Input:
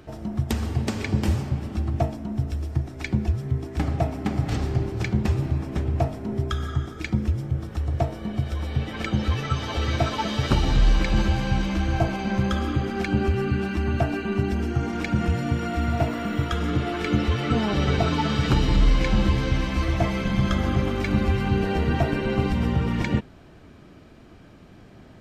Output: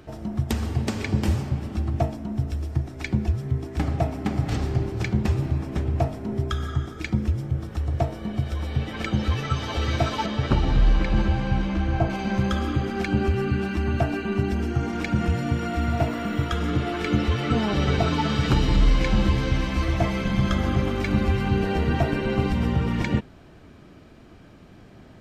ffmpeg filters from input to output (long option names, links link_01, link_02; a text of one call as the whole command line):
ffmpeg -i in.wav -filter_complex "[0:a]asettb=1/sr,asplit=3[link_01][link_02][link_03];[link_01]atrim=end=10.264[link_04];[link_02]atrim=start=10.26:end=12.1,asetpts=PTS-STARTPTS,afade=type=in:duration=0.004:curve=qsin,afade=type=out:start_time=1.836:duration=0.004:curve=qsin,lowpass=frequency=2200:poles=1[link_05];[link_03]atrim=start=12.096[link_06];[link_04][link_05]acrossfade=duration=0.004:curve1=hsin:curve2=qsin[link_07];[link_07][link_06]acrossfade=duration=0.004:curve1=qsin:curve2=hsin" out.wav